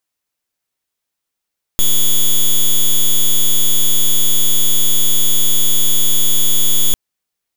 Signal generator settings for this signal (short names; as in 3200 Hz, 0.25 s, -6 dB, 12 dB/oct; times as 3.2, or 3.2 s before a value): pulse 3380 Hz, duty 6% -10 dBFS 5.15 s